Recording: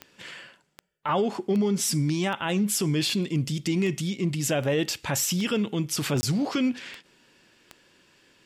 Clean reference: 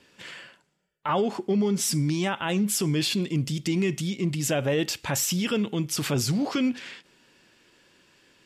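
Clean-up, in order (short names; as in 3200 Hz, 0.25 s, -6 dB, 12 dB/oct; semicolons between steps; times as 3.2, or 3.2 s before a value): de-click; interpolate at 6.21, 20 ms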